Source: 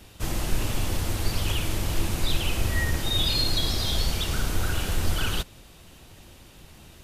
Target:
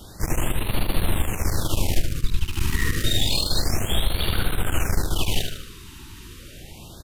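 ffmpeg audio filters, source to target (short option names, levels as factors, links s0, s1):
-filter_complex "[0:a]asplit=3[s0][s1][s2];[s0]afade=t=out:st=1.98:d=0.02[s3];[s1]asubboost=boost=4.5:cutoff=160,afade=t=in:st=1.98:d=0.02,afade=t=out:st=2.46:d=0.02[s4];[s2]afade=t=in:st=2.46:d=0.02[s5];[s3][s4][s5]amix=inputs=3:normalize=0,acompressor=threshold=0.0891:ratio=6,aeval=exprs='clip(val(0),-1,0.0119)':c=same,aecho=1:1:76|152|228|304|380|456:0.501|0.256|0.13|0.0665|0.0339|0.0173,afftfilt=real='re*(1-between(b*sr/1024,580*pow(6600/580,0.5+0.5*sin(2*PI*0.29*pts/sr))/1.41,580*pow(6600/580,0.5+0.5*sin(2*PI*0.29*pts/sr))*1.41))':imag='im*(1-between(b*sr/1024,580*pow(6600/580,0.5+0.5*sin(2*PI*0.29*pts/sr))/1.41,580*pow(6600/580,0.5+0.5*sin(2*PI*0.29*pts/sr))*1.41))':win_size=1024:overlap=0.75,volume=2.11"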